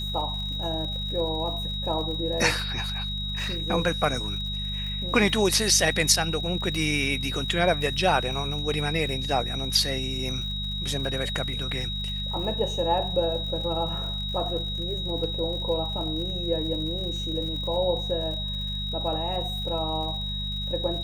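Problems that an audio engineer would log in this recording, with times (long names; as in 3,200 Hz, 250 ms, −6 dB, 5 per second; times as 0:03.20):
surface crackle 91 per second −36 dBFS
mains hum 50 Hz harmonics 4 −33 dBFS
whistle 3,800 Hz −31 dBFS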